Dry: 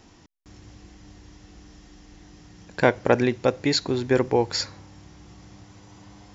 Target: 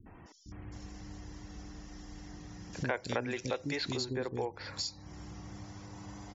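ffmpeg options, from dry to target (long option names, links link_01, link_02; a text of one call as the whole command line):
ffmpeg -i in.wav -filter_complex "[0:a]acrossover=split=310|3100[link_01][link_02][link_03];[link_02]adelay=60[link_04];[link_03]adelay=260[link_05];[link_01][link_04][link_05]amix=inputs=3:normalize=0,acompressor=threshold=-39dB:ratio=3,asettb=1/sr,asplit=3[link_06][link_07][link_08];[link_06]atrim=end=2.734[link_09];[link_07]atrim=start=2.73:end=3.97,asetpts=PTS-STARTPTS,afade=type=in:duration=0.004:curve=qsin,afade=type=out:start_time=1.236:duration=0.004:curve=qsin,highshelf=frequency=2300:gain=11.5[link_10];[link_08]atrim=start=3.966[link_11];[link_09][link_10]acrossfade=duration=0.004:curve1=hsin:curve2=qsin[link_12];[link_12][link_11]acrossfade=duration=0.004:curve1=qsin:curve2=hsin,afftfilt=real='re*gte(hypot(re,im),0.001)':imag='im*gte(hypot(re,im),0.001)':win_size=1024:overlap=0.75,volume=1.5dB" out.wav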